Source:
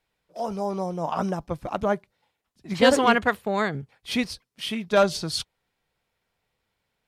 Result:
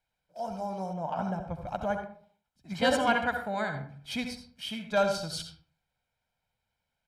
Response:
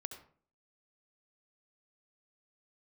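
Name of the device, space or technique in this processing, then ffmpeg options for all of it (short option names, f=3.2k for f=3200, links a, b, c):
microphone above a desk: -filter_complex "[0:a]aecho=1:1:1.3:0.65[a];[1:a]atrim=start_sample=2205[b];[a][b]afir=irnorm=-1:irlink=0,asettb=1/sr,asplit=3[c][d][e];[c]atrim=end=0.934[f];[d]atrim=start=0.93:end=1.67,asetpts=PTS-STARTPTS,afade=t=in:d=0.004:c=qsin,afade=t=out:st=0.736:d=0.004:c=qsin,bass=f=250:g=1,treble=f=4k:g=-9[g];[e]atrim=start=1.666[h];[f][g]acrossfade=d=0.004:c1=hsin:c2=qsin[i];[i][h]acrossfade=d=0.004:c1=qsin:c2=hsin,volume=-5dB"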